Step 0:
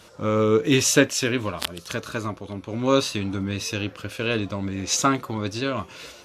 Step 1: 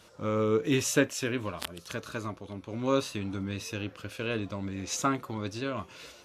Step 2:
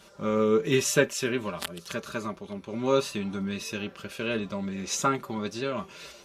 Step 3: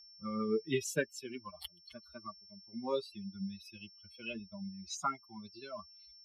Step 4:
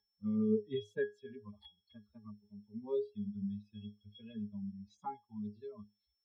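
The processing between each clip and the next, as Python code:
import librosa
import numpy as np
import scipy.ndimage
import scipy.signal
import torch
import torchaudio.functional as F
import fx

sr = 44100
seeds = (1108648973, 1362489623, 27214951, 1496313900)

y1 = fx.dynamic_eq(x, sr, hz=4600.0, q=1.0, threshold_db=-37.0, ratio=4.0, max_db=-5)
y1 = y1 * librosa.db_to_amplitude(-7.0)
y2 = y1 + 0.66 * np.pad(y1, (int(5.1 * sr / 1000.0), 0))[:len(y1)]
y2 = y2 * librosa.db_to_amplitude(1.5)
y3 = fx.bin_expand(y2, sr, power=3.0)
y3 = y3 + 10.0 ** (-56.0 / 20.0) * np.sin(2.0 * np.pi * 5400.0 * np.arange(len(y3)) / sr)
y3 = fx.band_squash(y3, sr, depth_pct=40)
y3 = y3 * librosa.db_to_amplitude(-4.5)
y4 = fx.octave_resonator(y3, sr, note='G#', decay_s=0.21)
y4 = y4 * librosa.db_to_amplitude(10.0)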